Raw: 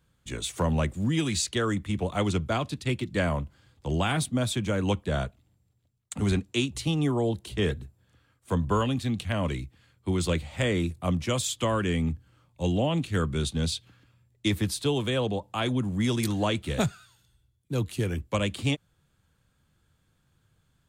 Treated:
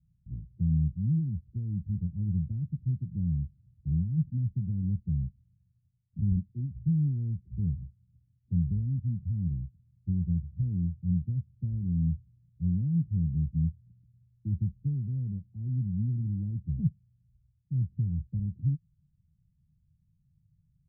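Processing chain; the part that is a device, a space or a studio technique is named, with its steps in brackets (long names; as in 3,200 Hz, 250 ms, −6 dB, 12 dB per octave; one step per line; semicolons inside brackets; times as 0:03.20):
the neighbour's flat through the wall (low-pass filter 160 Hz 24 dB per octave; parametric band 170 Hz +6 dB 0.63 octaves)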